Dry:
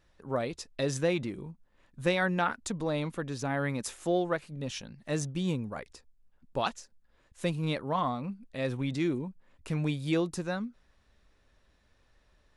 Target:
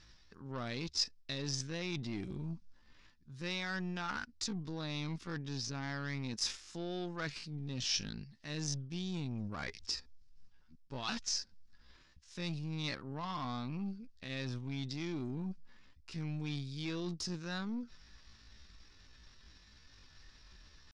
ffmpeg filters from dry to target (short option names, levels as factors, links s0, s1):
-af "equalizer=f=570:t=o:w=1.1:g=-11.5,areverse,acompressor=threshold=0.00501:ratio=5,areverse,aeval=exprs='0.0188*(cos(1*acos(clip(val(0)/0.0188,-1,1)))-cos(1*PI/2))+0.000944*(cos(4*acos(clip(val(0)/0.0188,-1,1)))-cos(4*PI/2))+0.000668*(cos(6*acos(clip(val(0)/0.0188,-1,1)))-cos(6*PI/2))+0.00119*(cos(8*acos(clip(val(0)/0.0188,-1,1)))-cos(8*PI/2))':c=same,asoftclip=type=tanh:threshold=0.0178,lowpass=f=5200:t=q:w=4,atempo=0.6,volume=2.37"